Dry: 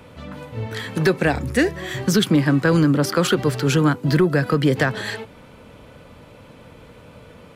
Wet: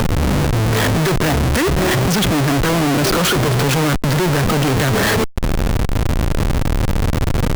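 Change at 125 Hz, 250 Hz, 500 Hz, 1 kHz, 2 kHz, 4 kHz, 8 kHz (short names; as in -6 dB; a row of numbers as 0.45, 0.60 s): +6.0, +2.0, +3.0, +8.0, +4.5, +7.5, +9.0 dB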